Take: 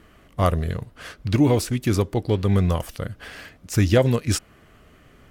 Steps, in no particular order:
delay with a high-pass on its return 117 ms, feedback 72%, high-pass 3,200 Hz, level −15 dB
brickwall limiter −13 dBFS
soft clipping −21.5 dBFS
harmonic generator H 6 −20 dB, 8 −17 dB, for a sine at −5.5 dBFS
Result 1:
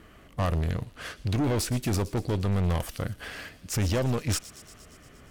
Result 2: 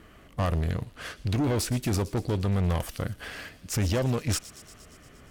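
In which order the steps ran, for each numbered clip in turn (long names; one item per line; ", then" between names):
brickwall limiter, then harmonic generator, then soft clipping, then delay with a high-pass on its return
brickwall limiter, then soft clipping, then harmonic generator, then delay with a high-pass on its return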